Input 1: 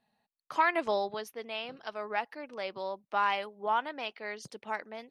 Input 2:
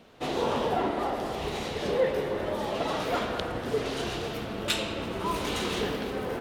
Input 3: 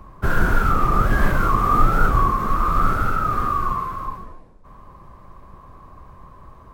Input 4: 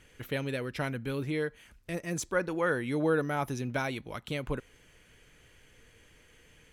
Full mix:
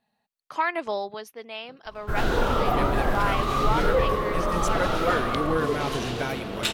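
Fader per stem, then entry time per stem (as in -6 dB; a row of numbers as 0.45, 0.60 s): +1.0, +1.5, -8.5, +1.0 dB; 0.00, 1.95, 1.85, 2.45 s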